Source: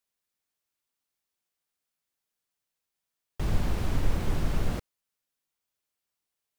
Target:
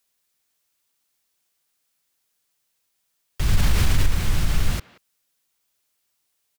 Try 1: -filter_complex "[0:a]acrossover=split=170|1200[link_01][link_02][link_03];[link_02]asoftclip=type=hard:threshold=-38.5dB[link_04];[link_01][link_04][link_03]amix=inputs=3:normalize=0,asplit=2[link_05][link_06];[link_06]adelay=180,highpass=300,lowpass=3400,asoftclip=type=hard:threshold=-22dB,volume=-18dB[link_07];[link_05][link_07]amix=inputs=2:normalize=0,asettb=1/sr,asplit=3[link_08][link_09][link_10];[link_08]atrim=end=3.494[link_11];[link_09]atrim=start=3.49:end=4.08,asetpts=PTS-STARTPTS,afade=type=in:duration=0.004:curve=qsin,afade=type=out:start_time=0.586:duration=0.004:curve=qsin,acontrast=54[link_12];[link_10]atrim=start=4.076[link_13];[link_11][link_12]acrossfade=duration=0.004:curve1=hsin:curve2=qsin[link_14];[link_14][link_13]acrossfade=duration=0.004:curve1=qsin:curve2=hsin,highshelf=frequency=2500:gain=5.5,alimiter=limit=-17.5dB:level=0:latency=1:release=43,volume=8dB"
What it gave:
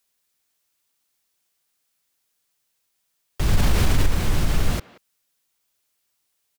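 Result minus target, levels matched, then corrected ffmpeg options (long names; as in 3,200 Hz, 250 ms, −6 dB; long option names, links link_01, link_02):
hard clipping: distortion −5 dB
-filter_complex "[0:a]acrossover=split=170|1200[link_01][link_02][link_03];[link_02]asoftclip=type=hard:threshold=-47dB[link_04];[link_01][link_04][link_03]amix=inputs=3:normalize=0,asplit=2[link_05][link_06];[link_06]adelay=180,highpass=300,lowpass=3400,asoftclip=type=hard:threshold=-22dB,volume=-18dB[link_07];[link_05][link_07]amix=inputs=2:normalize=0,asettb=1/sr,asplit=3[link_08][link_09][link_10];[link_08]atrim=end=3.494[link_11];[link_09]atrim=start=3.49:end=4.08,asetpts=PTS-STARTPTS,afade=type=in:duration=0.004:curve=qsin,afade=type=out:start_time=0.586:duration=0.004:curve=qsin,acontrast=54[link_12];[link_10]atrim=start=4.076[link_13];[link_11][link_12]acrossfade=duration=0.004:curve1=hsin:curve2=qsin[link_14];[link_14][link_13]acrossfade=duration=0.004:curve1=qsin:curve2=hsin,highshelf=frequency=2500:gain=5.5,alimiter=limit=-17.5dB:level=0:latency=1:release=43,volume=8dB"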